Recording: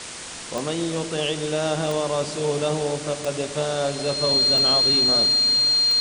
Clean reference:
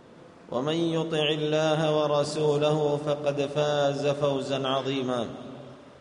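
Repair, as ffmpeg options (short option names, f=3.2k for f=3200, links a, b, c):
-af "adeclick=t=4,bandreject=f=4.2k:w=30,afwtdn=0.022"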